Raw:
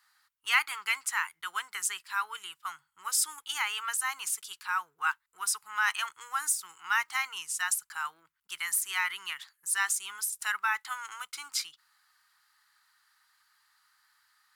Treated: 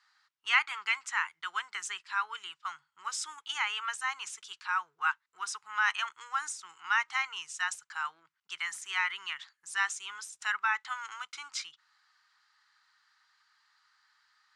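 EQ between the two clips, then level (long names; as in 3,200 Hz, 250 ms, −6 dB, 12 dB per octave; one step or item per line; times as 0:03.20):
dynamic equaliser 4,700 Hz, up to −7 dB, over −53 dBFS, Q 3.4
loudspeaker in its box 120–6,400 Hz, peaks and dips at 190 Hz −4 dB, 270 Hz −7 dB, 510 Hz −4 dB
0.0 dB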